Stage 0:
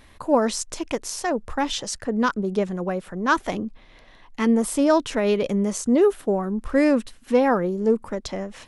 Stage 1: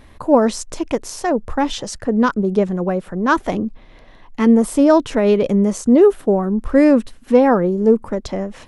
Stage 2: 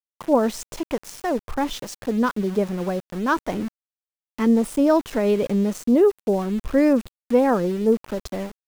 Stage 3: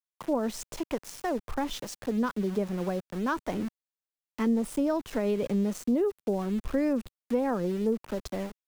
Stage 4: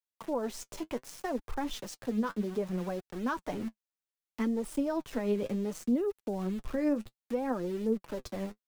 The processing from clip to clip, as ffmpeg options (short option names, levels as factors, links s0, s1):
-af "tiltshelf=f=1200:g=4,volume=1.5"
-af "aeval=exprs='val(0)*gte(abs(val(0)),0.0398)':c=same,volume=0.531"
-filter_complex "[0:a]acrossover=split=170[s0][s1];[s1]acompressor=threshold=0.0794:ratio=3[s2];[s0][s2]amix=inputs=2:normalize=0,volume=0.596"
-af "flanger=delay=1.9:depth=8.6:regen=43:speed=0.65:shape=triangular"